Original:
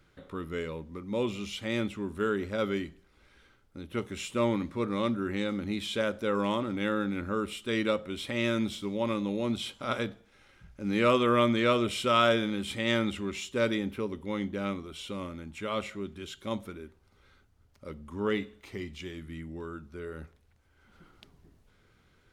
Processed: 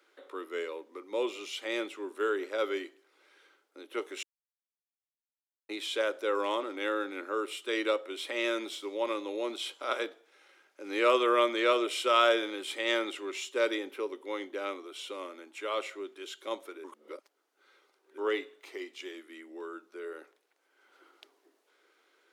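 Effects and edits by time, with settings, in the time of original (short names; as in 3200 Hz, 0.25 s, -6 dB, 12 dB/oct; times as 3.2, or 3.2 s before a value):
4.23–5.69 mute
16.84–18.18 reverse
whole clip: steep high-pass 320 Hz 48 dB/oct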